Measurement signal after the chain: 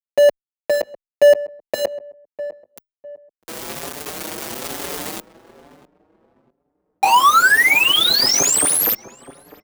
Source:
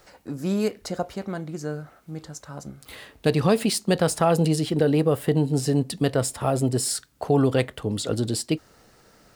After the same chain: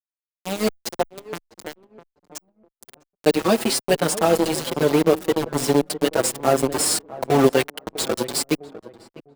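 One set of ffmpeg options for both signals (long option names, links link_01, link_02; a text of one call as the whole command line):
ffmpeg -i in.wav -filter_complex "[0:a]highpass=frequency=54:width=0.5412,highpass=frequency=54:width=1.3066,tiltshelf=frequency=920:gain=-9,bandreject=frequency=258.8:width_type=h:width=4,bandreject=frequency=517.6:width_type=h:width=4,bandreject=frequency=776.4:width_type=h:width=4,bandreject=frequency=1035.2:width_type=h:width=4,bandreject=frequency=1294:width_type=h:width=4,bandreject=frequency=1552.8:width_type=h:width=4,bandreject=frequency=1811.6:width_type=h:width=4,bandreject=frequency=2070.4:width_type=h:width=4,bandreject=frequency=2329.2:width_type=h:width=4,bandreject=frequency=2588:width_type=h:width=4,bandreject=frequency=2846.8:width_type=h:width=4,bandreject=frequency=3105.6:width_type=h:width=4,bandreject=frequency=3364.4:width_type=h:width=4,bandreject=frequency=3623.2:width_type=h:width=4,bandreject=frequency=3882:width_type=h:width=4,bandreject=frequency=4140.8:width_type=h:width=4,bandreject=frequency=4399.6:width_type=h:width=4,bandreject=frequency=4658.4:width_type=h:width=4,bandreject=frequency=4917.2:width_type=h:width=4,bandreject=frequency=5176:width_type=h:width=4,bandreject=frequency=5434.8:width_type=h:width=4,acrusher=bits=3:mix=0:aa=0.000001,equalizer=frequency=360:width=0.38:gain=15,dynaudnorm=framelen=270:gausssize=13:maxgain=11.5dB,asplit=2[link_01][link_02];[link_02]adelay=652,lowpass=frequency=1000:poles=1,volume=-14.5dB,asplit=2[link_03][link_04];[link_04]adelay=652,lowpass=frequency=1000:poles=1,volume=0.3,asplit=2[link_05][link_06];[link_06]adelay=652,lowpass=frequency=1000:poles=1,volume=0.3[link_07];[link_01][link_03][link_05][link_07]amix=inputs=4:normalize=0,asplit=2[link_08][link_09];[link_09]adelay=5.6,afreqshift=1.1[link_10];[link_08][link_10]amix=inputs=2:normalize=1" out.wav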